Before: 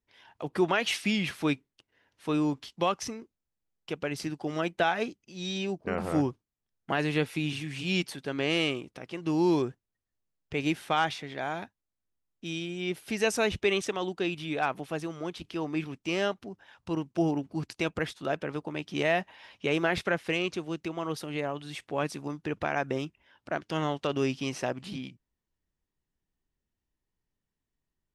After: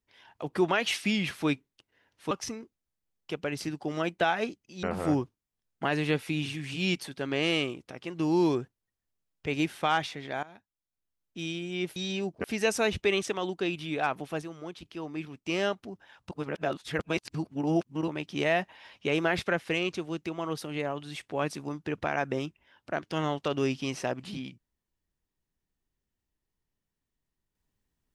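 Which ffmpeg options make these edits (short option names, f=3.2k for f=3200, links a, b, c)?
-filter_complex "[0:a]asplit=10[a][b][c][d][e][f][g][h][i][j];[a]atrim=end=2.312[k];[b]atrim=start=2.898:end=5.422[l];[c]atrim=start=5.898:end=11.5,asetpts=PTS-STARTPTS,afade=t=out:st=5.598:d=0.004:c=hsin:silence=0.112202[m];[d]atrim=start=11.5:end=13.032,asetpts=PTS-STARTPTS,afade=t=in:d=0.98:silence=0.112202[n];[e]atrim=start=5.418:end=5.902[o];[f]atrim=start=13.028:end=15.012[p];[g]atrim=start=15.008:end=16.052,asetpts=PTS-STARTPTS,volume=-5dB[q];[h]atrim=start=16.048:end=16.902[r];[i]atrim=start=16.898:end=18.672,asetpts=PTS-STARTPTS,areverse[s];[j]atrim=start=18.668[t];[k][l]acrossfade=d=0.004:c1=hsin:c2=hsin[u];[m][n]concat=n=2:v=0:a=1[v];[u][v]acrossfade=d=0.004:c1=hsin:c2=hsin[w];[w][o]acrossfade=d=0.004:c1=hsin:c2=hsin[x];[x][p]acrossfade=d=0.004:c1=hsin:c2=hsin[y];[y][q]acrossfade=d=0.004:c1=hsin:c2=hsin[z];[z][r]acrossfade=d=0.004:c1=hsin:c2=hsin[aa];[aa][s]acrossfade=d=0.004:c1=hsin:c2=hsin[ab];[ab][t]acrossfade=d=0.004:c1=hsin:c2=hsin"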